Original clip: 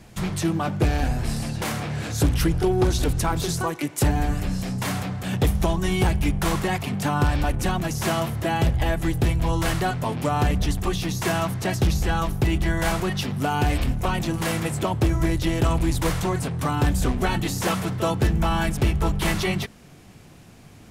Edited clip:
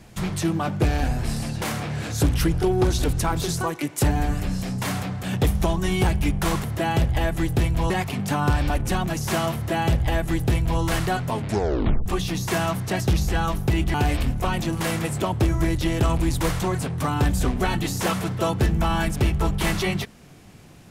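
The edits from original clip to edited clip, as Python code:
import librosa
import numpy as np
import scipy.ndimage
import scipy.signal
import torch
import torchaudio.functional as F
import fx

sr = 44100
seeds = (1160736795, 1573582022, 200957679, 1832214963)

y = fx.edit(x, sr, fx.duplicate(start_s=8.29, length_s=1.26, to_s=6.64),
    fx.tape_stop(start_s=10.09, length_s=0.71),
    fx.cut(start_s=12.68, length_s=0.87), tone=tone)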